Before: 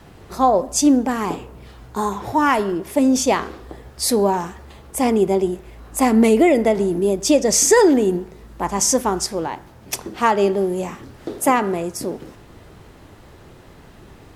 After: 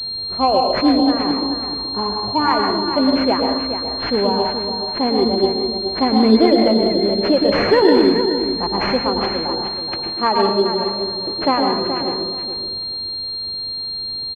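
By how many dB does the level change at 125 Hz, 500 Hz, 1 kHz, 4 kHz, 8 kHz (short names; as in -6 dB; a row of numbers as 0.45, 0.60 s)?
0.0 dB, +1.5 dB, +1.5 dB, +12.5 dB, under -30 dB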